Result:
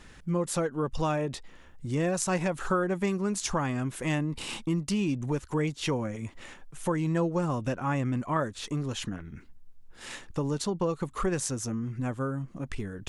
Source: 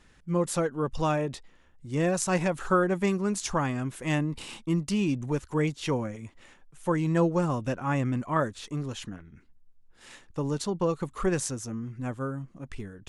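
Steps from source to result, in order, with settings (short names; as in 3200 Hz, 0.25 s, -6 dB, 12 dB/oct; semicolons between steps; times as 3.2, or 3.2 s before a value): compressor 2:1, threshold -41 dBFS, peak gain reduction 12.5 dB; gain +8 dB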